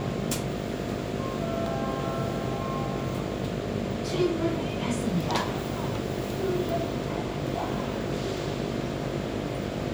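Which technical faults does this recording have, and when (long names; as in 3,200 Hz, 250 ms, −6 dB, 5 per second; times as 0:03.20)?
mains buzz 50 Hz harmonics 14 −35 dBFS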